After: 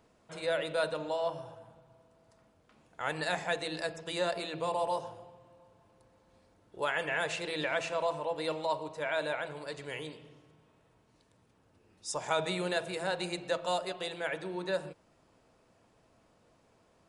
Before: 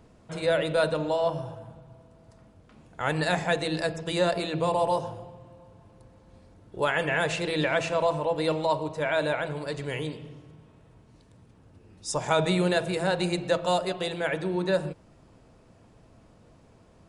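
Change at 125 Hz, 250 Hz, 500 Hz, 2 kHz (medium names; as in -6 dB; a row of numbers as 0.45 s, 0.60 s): -14.0 dB, -11.0 dB, -7.5 dB, -5.5 dB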